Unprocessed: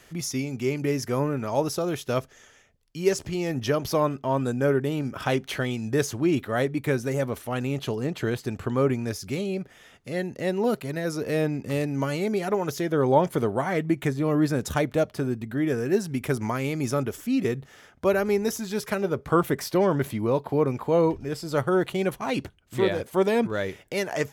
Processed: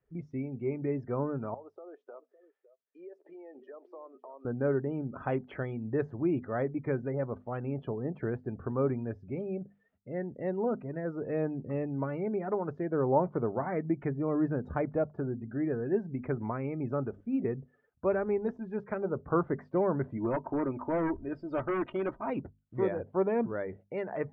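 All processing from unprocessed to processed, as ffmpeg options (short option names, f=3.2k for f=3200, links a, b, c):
-filter_complex "[0:a]asettb=1/sr,asplit=3[a][b][c];[a]atrim=end=1.544[d];[b]atrim=start=1.54:end=4.45,asetpts=PTS-STARTPTS,afade=t=in:d=0.004:c=qsin,afade=t=out:st=2.906:d=0.004:c=qsin,highpass=f=380:w=0.5412,highpass=f=380:w=1.3066,acompressor=threshold=-38dB:ratio=6:attack=3.2:release=140:knee=1:detection=peak,aecho=1:1:558:0.211,atrim=end_sample=128331[e];[c]atrim=start=4.446[f];[d][e]acrossfade=d=0.004:c1=hsin:c2=qsin[g];[g][f]acrossfade=d=0.004:c1=qsin:c2=hsin,asettb=1/sr,asplit=3[h][i][j];[h]atrim=end=20.174[k];[i]atrim=start=20.17:end=22.3,asetpts=PTS-STARTPTS,afade=t=in:d=0.004:c=qsin,afade=t=out:st=2.126:d=0.004:c=qsin,highshelf=f=2.4k:g=6.5,aecho=1:1:3.2:0.62,atrim=end_sample=93933,aeval=exprs='0.126*(abs(mod(val(0)/0.126+3,4)-2)-1)':c=same[l];[j]atrim=start=22.296[m];[k][l]acrossfade=d=0.004:c1=hsin:c2=qsin[n];[n][m]acrossfade=d=0.004:c1=qsin:c2=hsin,lowpass=1.4k,afftdn=nr=22:nf=-45,bandreject=f=50:t=h:w=6,bandreject=f=100:t=h:w=6,bandreject=f=150:t=h:w=6,bandreject=f=200:t=h:w=6,bandreject=f=250:t=h:w=6,volume=-6dB"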